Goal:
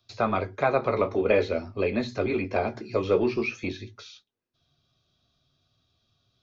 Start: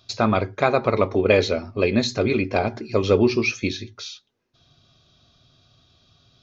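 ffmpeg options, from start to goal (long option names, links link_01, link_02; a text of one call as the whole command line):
ffmpeg -i in.wav -filter_complex "[0:a]acrossover=split=2700[link_01][link_02];[link_02]acompressor=threshold=-43dB:ratio=4:attack=1:release=60[link_03];[link_01][link_03]amix=inputs=2:normalize=0,agate=range=-9dB:threshold=-51dB:ratio=16:detection=peak,flanger=delay=8.4:depth=8.6:regen=-44:speed=0.49:shape=triangular,acrossover=split=270|520|2100[link_04][link_05][link_06][link_07];[link_04]asoftclip=type=tanh:threshold=-32.5dB[link_08];[link_08][link_05][link_06][link_07]amix=inputs=4:normalize=0" out.wav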